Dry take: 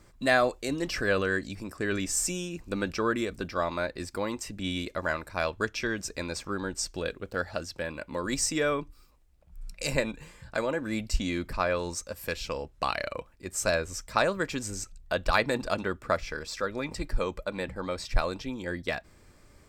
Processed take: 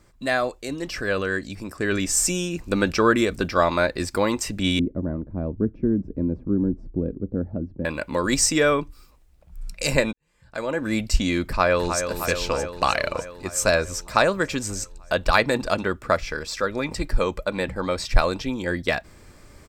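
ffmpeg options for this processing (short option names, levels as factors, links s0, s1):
-filter_complex "[0:a]asettb=1/sr,asplit=3[s0][s1][s2];[s0]atrim=end=4.794[s3];[s1]atrim=start=4.79:end=7.85,asetpts=PTS-STARTPTS,afade=t=in:d=0.004:c=qsin,afade=t=out:st=3.056:d=0.004:c=qsin,lowpass=f=260:t=q:w=1.9[s4];[s2]atrim=start=7.846[s5];[s3][s4]acrossfade=d=0.004:c1=hsin:c2=qsin[s6];[s6][s5]acrossfade=d=0.004:c1=qsin:c2=hsin,asplit=2[s7][s8];[s8]afade=t=in:st=11.46:d=0.01,afade=t=out:st=12.07:d=0.01,aecho=0:1:310|620|930|1240|1550|1860|2170|2480|2790|3100|3410|3720:0.398107|0.29858|0.223935|0.167951|0.125964|0.0944727|0.0708545|0.0531409|0.0398557|0.0298918|0.0224188|0.0168141[s9];[s7][s9]amix=inputs=2:normalize=0,asplit=2[s10][s11];[s10]atrim=end=10.13,asetpts=PTS-STARTPTS,afade=t=out:st=10.126:d=0.004:c=hsin[s12];[s11]atrim=start=10.13,asetpts=PTS-STARTPTS,afade=t=in:d=0.72:c=qua[s13];[s12][s13]concat=n=2:v=0:a=1,dynaudnorm=f=500:g=7:m=3.35"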